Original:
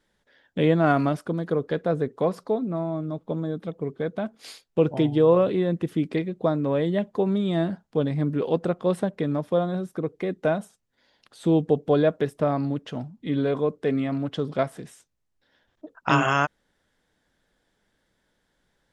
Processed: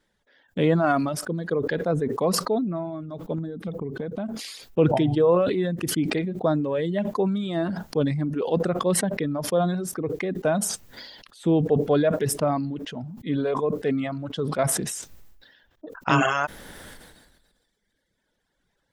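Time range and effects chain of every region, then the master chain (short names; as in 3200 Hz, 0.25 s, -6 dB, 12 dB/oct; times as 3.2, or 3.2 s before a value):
3.38–4.4 low shelf 460 Hz +8.5 dB + compressor 10:1, threshold -25 dBFS
whole clip: reverb removal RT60 1.7 s; sustainer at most 40 dB/s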